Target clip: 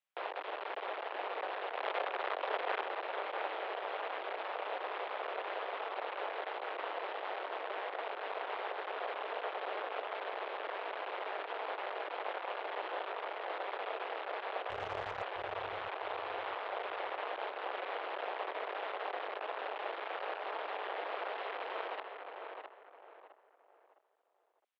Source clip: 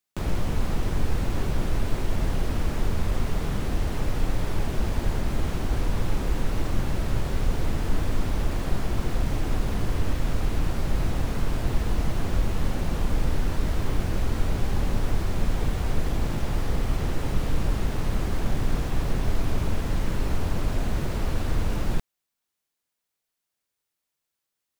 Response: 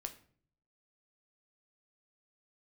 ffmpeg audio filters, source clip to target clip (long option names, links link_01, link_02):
-filter_complex "[0:a]asettb=1/sr,asplit=3[link_01][link_02][link_03];[link_01]atrim=end=1.704[link_04];[link_02]atrim=start=1.7:end=2.84,asetpts=PTS-STARTPTS,afade=type=in:duration=0.004:curve=qsin,afade=type=out:start_time=1.136:duration=0.004:curve=qsin,acontrast=86[link_05];[link_03]atrim=start=2.836[link_06];[link_04][link_05]acrossfade=duration=0.004:curve1=hsin:curve2=qsin[link_07];[link_07][link_06]acrossfade=duration=0.004:curve1=qsin:curve2=hsin,asoftclip=type=hard:threshold=-21dB,highpass=frequency=290:width_type=q:width=0.5412,highpass=frequency=290:width_type=q:width=1.307,lowpass=frequency=3200:width_type=q:width=0.5176,lowpass=frequency=3200:width_type=q:width=0.7071,lowpass=frequency=3200:width_type=q:width=1.932,afreqshift=260,asplit=3[link_08][link_09][link_10];[link_08]afade=type=out:start_time=14.69:duration=0.02[link_11];[link_09]aeval=exprs='0.0531*(cos(1*acos(clip(val(0)/0.0531,-1,1)))-cos(1*PI/2))+0.00376*(cos(6*acos(clip(val(0)/0.0531,-1,1)))-cos(6*PI/2))':channel_layout=same,afade=type=in:start_time=14.69:duration=0.02,afade=type=out:start_time=15.21:duration=0.02[link_12];[link_10]afade=type=in:start_time=15.21:duration=0.02[link_13];[link_11][link_12][link_13]amix=inputs=3:normalize=0,asplit=2[link_14][link_15];[link_15]adelay=661,lowpass=frequency=2200:poles=1,volume=-4.5dB,asplit=2[link_16][link_17];[link_17]adelay=661,lowpass=frequency=2200:poles=1,volume=0.33,asplit=2[link_18][link_19];[link_19]adelay=661,lowpass=frequency=2200:poles=1,volume=0.33,asplit=2[link_20][link_21];[link_21]adelay=661,lowpass=frequency=2200:poles=1,volume=0.33[link_22];[link_14][link_16][link_18][link_20][link_22]amix=inputs=5:normalize=0,aeval=exprs='val(0)*sin(2*PI*99*n/s)':channel_layout=same" -ar 48000 -c:a libopus -b:a 256k